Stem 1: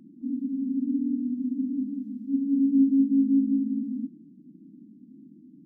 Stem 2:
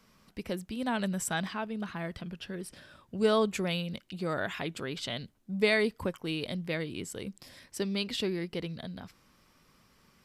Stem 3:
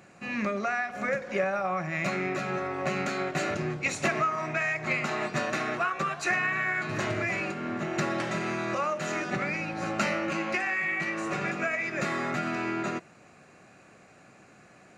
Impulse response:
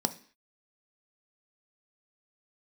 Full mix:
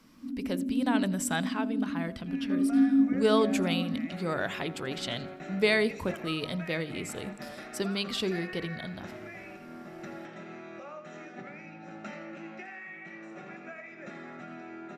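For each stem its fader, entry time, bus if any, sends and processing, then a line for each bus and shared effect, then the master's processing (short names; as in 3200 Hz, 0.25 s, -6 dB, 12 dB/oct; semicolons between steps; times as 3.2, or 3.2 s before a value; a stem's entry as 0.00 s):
-0.5 dB, 0.00 s, no send, no echo send, tremolo saw up 0.96 Hz, depth 75%
+1.5 dB, 0.00 s, no send, echo send -22.5 dB, de-hum 50.76 Hz, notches 13
-18.0 dB, 2.05 s, send -10.5 dB, echo send -8 dB, LPF 4700 Hz 12 dB/oct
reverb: on, RT60 0.45 s, pre-delay 3 ms
echo: feedback echo 84 ms, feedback 46%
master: dry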